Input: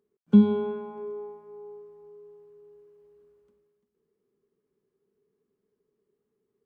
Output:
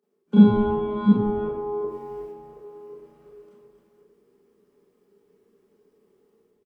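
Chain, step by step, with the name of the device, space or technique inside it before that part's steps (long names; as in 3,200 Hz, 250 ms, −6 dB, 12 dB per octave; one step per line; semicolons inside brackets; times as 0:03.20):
delay that plays each chunk backwards 362 ms, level −5.5 dB
0:01.88–0:02.28: high shelf with overshoot 1,600 Hz +6.5 dB, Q 1.5
far laptop microphone (convolution reverb RT60 0.60 s, pre-delay 27 ms, DRR −9 dB; high-pass filter 190 Hz 24 dB per octave; automatic gain control gain up to 7.5 dB)
echo with shifted repeats 92 ms, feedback 61%, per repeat −92 Hz, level −18 dB
level −2.5 dB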